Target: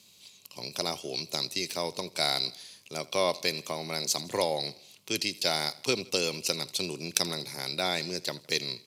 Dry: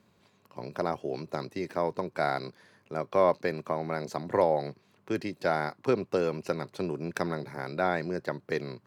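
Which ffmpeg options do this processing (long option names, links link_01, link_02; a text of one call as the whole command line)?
ffmpeg -i in.wav -af "aecho=1:1:81|162|243|324:0.0841|0.0438|0.0228|0.0118,aexciter=amount=7.2:drive=9:freq=2500,aresample=32000,aresample=44100,volume=-4.5dB" out.wav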